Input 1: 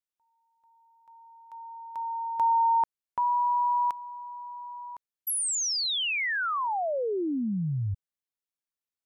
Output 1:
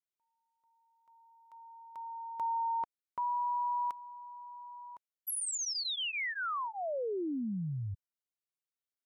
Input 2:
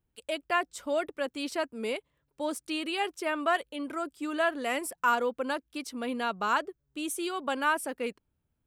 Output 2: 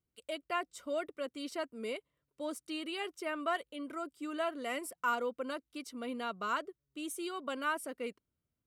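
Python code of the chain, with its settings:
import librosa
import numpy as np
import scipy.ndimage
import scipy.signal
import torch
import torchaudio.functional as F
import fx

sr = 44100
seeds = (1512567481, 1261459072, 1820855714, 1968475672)

y = fx.notch_comb(x, sr, f0_hz=850.0)
y = y * 10.0 ** (-6.0 / 20.0)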